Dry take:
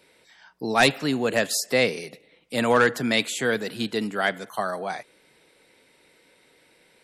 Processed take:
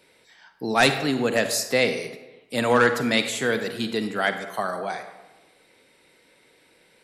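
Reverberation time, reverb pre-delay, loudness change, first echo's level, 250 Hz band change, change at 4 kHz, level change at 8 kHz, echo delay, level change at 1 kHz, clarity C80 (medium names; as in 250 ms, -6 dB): 1.0 s, 38 ms, +0.5 dB, no echo, +0.5 dB, +0.5 dB, +0.5 dB, no echo, +0.5 dB, 11.0 dB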